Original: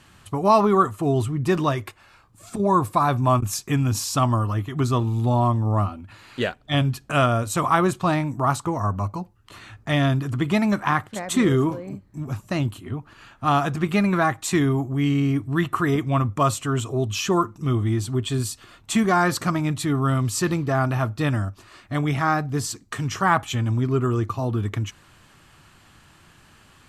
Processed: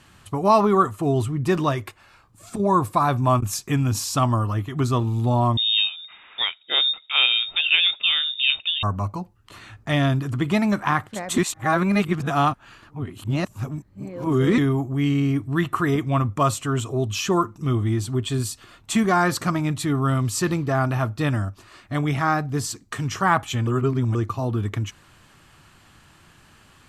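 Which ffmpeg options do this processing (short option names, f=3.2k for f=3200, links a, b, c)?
-filter_complex "[0:a]asettb=1/sr,asplit=3[a][b][c];[a]atrim=end=5.574[d];[b]atrim=start=5.57:end=8.83,asetpts=PTS-STARTPTS,afade=t=in:d=0.004:c=qsin,afade=t=out:st=3.256:d=0.004:c=qsin,lowpass=f=3.2k:t=q:w=0.5098,lowpass=f=3.2k:t=q:w=0.6013,lowpass=f=3.2k:t=q:w=0.9,lowpass=f=3.2k:t=q:w=2.563,afreqshift=-3800[e];[c]atrim=start=8.826[f];[d][e]acrossfade=d=0.004:c1=hsin:c2=qsin[g];[g][f]acrossfade=d=0.004:c1=qsin:c2=hsin,asplit=5[h][i][j][k][l];[h]atrim=end=11.382[m];[i]atrim=start=11.378:end=14.582,asetpts=PTS-STARTPTS,areverse[n];[j]atrim=start=14.578:end=23.672[o];[k]atrim=start=23.668:end=24.152,asetpts=PTS-STARTPTS,areverse[p];[l]atrim=start=24.148[q];[m][n]acrossfade=d=0.004:c1=hsin:c2=hsin[r];[r][o]acrossfade=d=0.004:c1=hsin:c2=hsin[s];[s][p]acrossfade=d=0.004:c1=hsin:c2=hsin[t];[t][q]acrossfade=d=0.004:c1=hsin:c2=hsin"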